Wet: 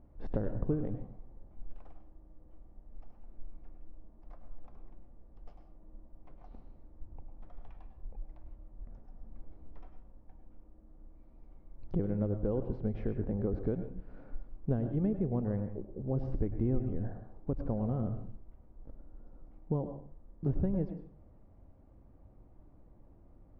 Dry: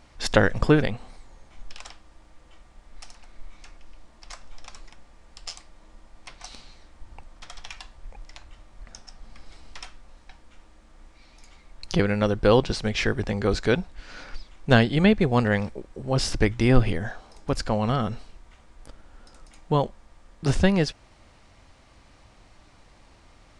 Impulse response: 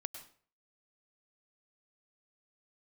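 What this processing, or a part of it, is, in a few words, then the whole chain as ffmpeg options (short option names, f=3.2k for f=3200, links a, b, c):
television next door: -filter_complex "[0:a]acompressor=threshold=-24dB:ratio=5,lowpass=450[a];[1:a]atrim=start_sample=2205[b];[a][b]afir=irnorm=-1:irlink=0"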